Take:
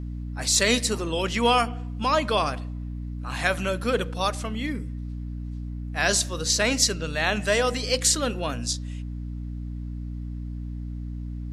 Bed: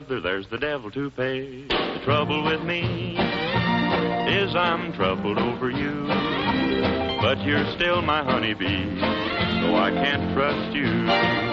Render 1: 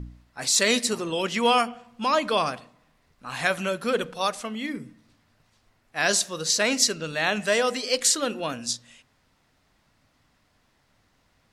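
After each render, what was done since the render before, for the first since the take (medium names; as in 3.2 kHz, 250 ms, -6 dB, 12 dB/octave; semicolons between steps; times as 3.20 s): de-hum 60 Hz, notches 5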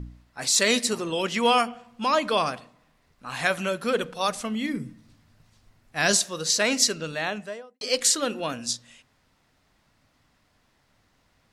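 4.28–6.17 s: tone controls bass +8 dB, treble +3 dB; 6.97–7.81 s: studio fade out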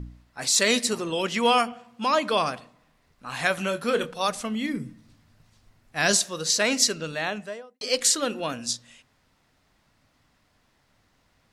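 1.72–2.31 s: high-pass 100 Hz; 3.55–4.11 s: doubling 25 ms -9.5 dB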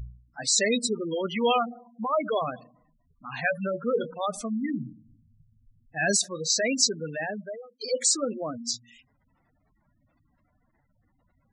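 spectral gate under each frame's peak -10 dB strong; dynamic bell 1 kHz, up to -6 dB, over -41 dBFS, Q 2.5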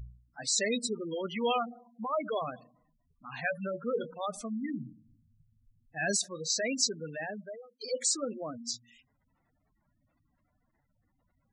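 trim -6 dB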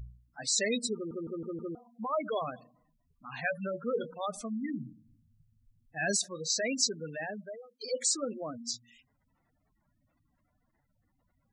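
0.95 s: stutter in place 0.16 s, 5 plays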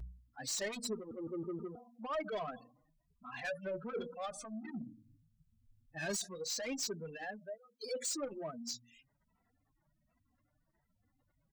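saturation -31.5 dBFS, distortion -9 dB; endless flanger 2.7 ms +1.3 Hz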